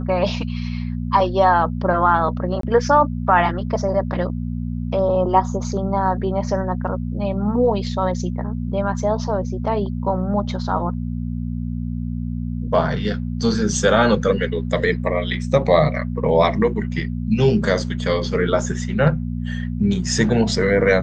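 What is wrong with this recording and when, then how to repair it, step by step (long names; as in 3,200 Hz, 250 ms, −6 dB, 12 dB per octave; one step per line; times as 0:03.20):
mains hum 60 Hz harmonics 4 −25 dBFS
0:02.61–0:02.63: drop-out 23 ms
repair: hum removal 60 Hz, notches 4
repair the gap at 0:02.61, 23 ms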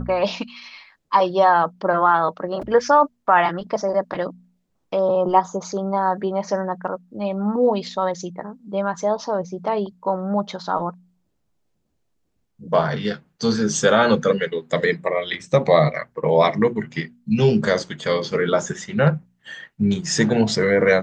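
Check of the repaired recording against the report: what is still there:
none of them is left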